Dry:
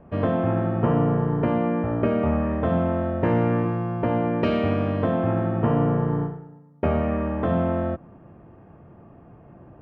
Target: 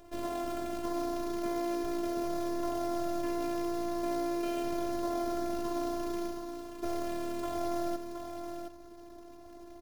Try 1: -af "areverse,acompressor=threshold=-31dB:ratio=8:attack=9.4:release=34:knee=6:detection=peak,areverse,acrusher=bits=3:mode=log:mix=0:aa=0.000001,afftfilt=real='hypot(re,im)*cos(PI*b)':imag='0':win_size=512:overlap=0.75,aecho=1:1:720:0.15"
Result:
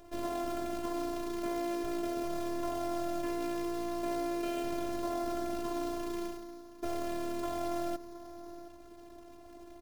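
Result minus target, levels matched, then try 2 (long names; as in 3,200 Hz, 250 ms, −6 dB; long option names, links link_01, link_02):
echo-to-direct −9.5 dB
-af "areverse,acompressor=threshold=-31dB:ratio=8:attack=9.4:release=34:knee=6:detection=peak,areverse,acrusher=bits=3:mode=log:mix=0:aa=0.000001,afftfilt=real='hypot(re,im)*cos(PI*b)':imag='0':win_size=512:overlap=0.75,aecho=1:1:720:0.447"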